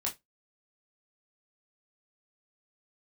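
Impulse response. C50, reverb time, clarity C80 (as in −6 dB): 15.5 dB, 0.15 s, 26.5 dB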